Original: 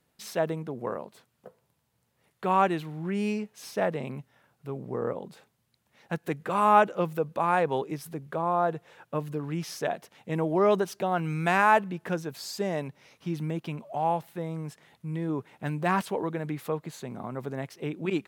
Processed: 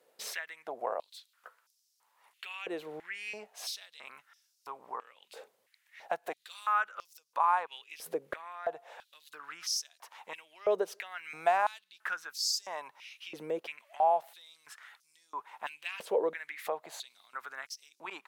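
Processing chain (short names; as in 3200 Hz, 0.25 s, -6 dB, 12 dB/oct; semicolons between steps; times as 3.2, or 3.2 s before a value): compressor 2.5:1, threshold -37 dBFS, peak gain reduction 15 dB; stepped high-pass 3 Hz 490–5400 Hz; gain +1.5 dB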